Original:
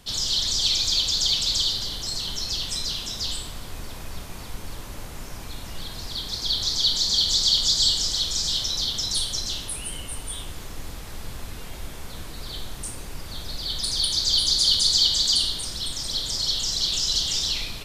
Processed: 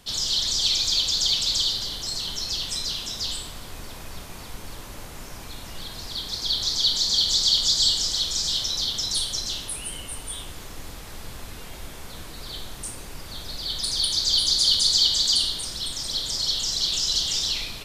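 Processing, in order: bass shelf 190 Hz -4 dB

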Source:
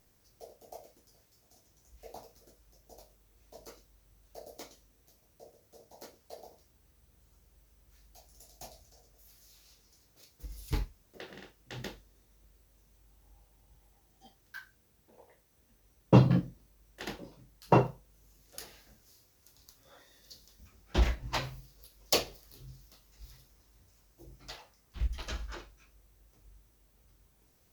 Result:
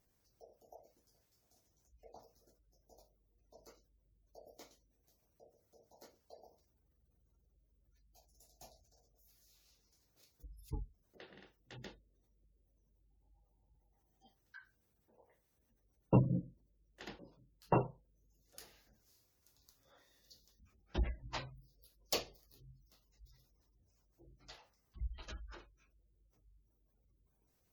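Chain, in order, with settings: Chebyshev shaper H 4 -22 dB, 5 -32 dB, 7 -30 dB, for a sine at -6.5 dBFS; spectral gate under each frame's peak -25 dB strong; trim -8.5 dB

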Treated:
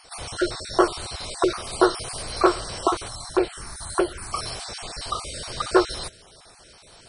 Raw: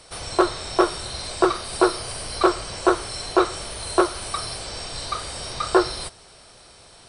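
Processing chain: random holes in the spectrogram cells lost 25%; 3.08–4.33 s: touch-sensitive phaser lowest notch 360 Hz, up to 1.2 kHz, full sweep at -15.5 dBFS

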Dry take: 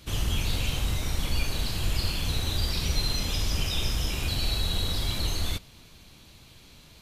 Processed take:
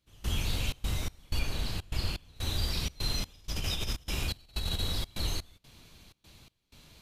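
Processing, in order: 1.39–2.36 s: treble shelf 5 kHz -5.5 dB; 3.25–4.82 s: compressor with a negative ratio -27 dBFS, ratio -0.5; trance gate "..xxxx.xx" 125 bpm -24 dB; trim -3.5 dB

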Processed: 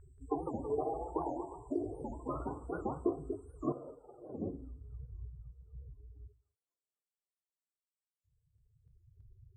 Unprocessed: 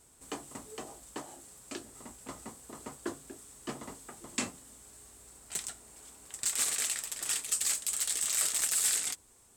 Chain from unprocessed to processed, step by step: peaking EQ 220 Hz -10 dB 0.46 oct; harmonic-percussive split harmonic +6 dB; peaking EQ 2.1 kHz -14 dB 1.1 oct; compression, threshold -39 dBFS, peak gain reduction 15.5 dB; loudest bins only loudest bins 16; 3.72–4.42 s: cascade formant filter e; low-pass sweep 1.5 kHz -> 150 Hz, 3.90–4.96 s; ever faster or slower copies 181 ms, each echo +1 st, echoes 3, each echo -6 dB; feedback echo behind a high-pass 254 ms, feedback 69%, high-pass 2.5 kHz, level -13.5 dB; on a send at -12 dB: reverberation, pre-delay 5 ms; on the sum: warped record 78 rpm, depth 250 cents; trim +10.5 dB

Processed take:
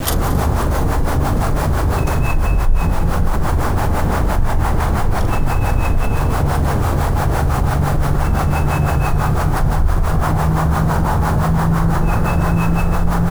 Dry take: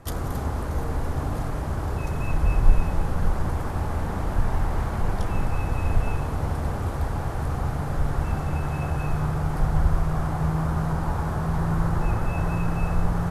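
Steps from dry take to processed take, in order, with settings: bit crusher 8-bit; harmonic tremolo 5.9 Hz, depth 70%, crossover 530 Hz; multi-tap echo 42/228 ms -7.5/-16.5 dB; level flattener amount 70%; trim -1 dB

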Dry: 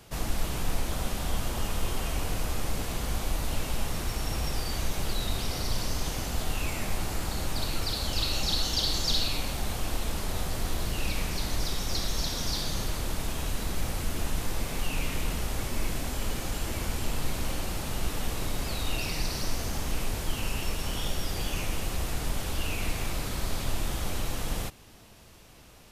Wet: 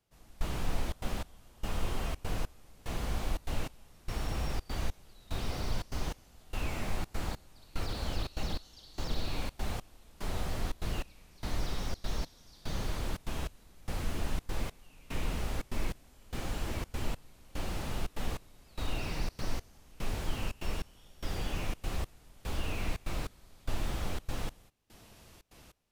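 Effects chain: trance gate "....xxxxx.xx" 147 bpm -24 dB; slew-rate limiter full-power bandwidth 36 Hz; trim -3 dB

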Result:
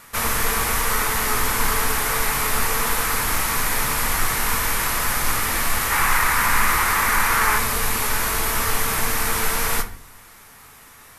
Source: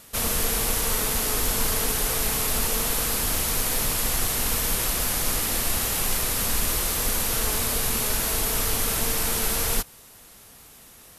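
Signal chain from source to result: high-order bell 1.4 kHz +9 dB, from 5.90 s +15.5 dB, from 7.57 s +8 dB; simulated room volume 57 m³, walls mixed, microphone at 0.32 m

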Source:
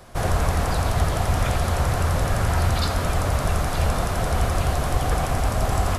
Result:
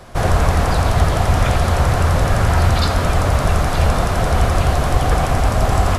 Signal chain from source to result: treble shelf 8.5 kHz -7.5 dB; trim +6.5 dB

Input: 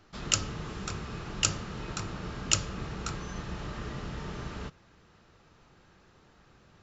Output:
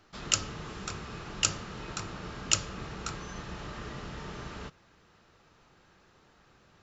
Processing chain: bass shelf 300 Hz -5 dB

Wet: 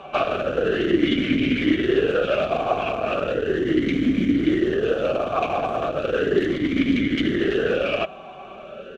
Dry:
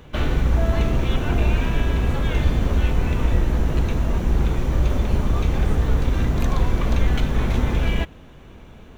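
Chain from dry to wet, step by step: comb 5.2 ms, depth 69%; in parallel at -3 dB: compressor with a negative ratio -18 dBFS, ratio -0.5; on the sum: sine folder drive 11 dB, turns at -2 dBFS; talking filter a-i 0.36 Hz

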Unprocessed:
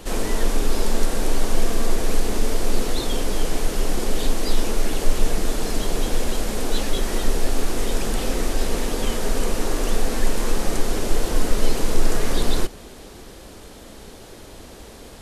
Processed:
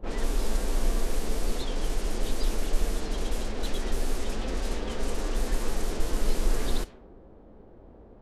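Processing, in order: level-controlled noise filter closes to 650 Hz, open at -12.5 dBFS; time stretch by phase-locked vocoder 0.54×; trim -6 dB

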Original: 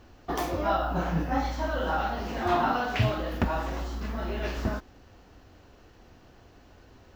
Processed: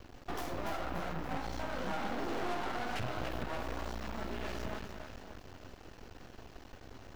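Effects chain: compression 3:1, threshold -36 dBFS, peak gain reduction 12.5 dB; 1.76–2.54 s: resonant high-pass 150 Hz -> 480 Hz, resonance Q 4.2; saturation -34 dBFS, distortion -12 dB; on a send: two-band feedback delay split 300 Hz, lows 174 ms, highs 288 ms, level -6 dB; on the sum: half-wave rectifier; trim +5 dB

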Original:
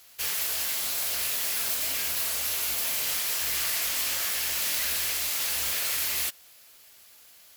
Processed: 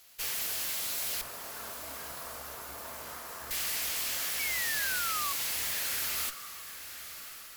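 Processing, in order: 1.21–3.51 s: resonant high shelf 1.8 kHz -13.5 dB, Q 1.5; valve stage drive 28 dB, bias 0.7; 4.39–5.33 s: painted sound fall 1.1–2.3 kHz -36 dBFS; echo that smears into a reverb 1110 ms, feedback 40%, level -12 dB

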